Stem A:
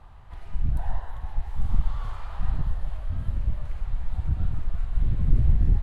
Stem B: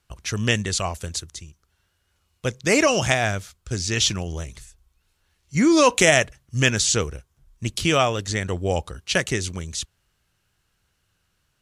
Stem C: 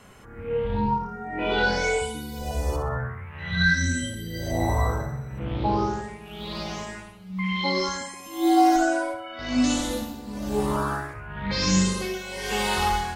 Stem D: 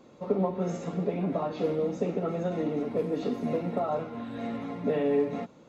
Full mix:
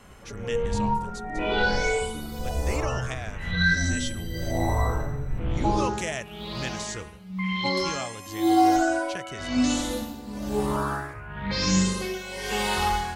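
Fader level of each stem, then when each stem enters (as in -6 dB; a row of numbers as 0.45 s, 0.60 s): -11.5 dB, -15.5 dB, -1.0 dB, -18.0 dB; 0.00 s, 0.00 s, 0.00 s, 0.00 s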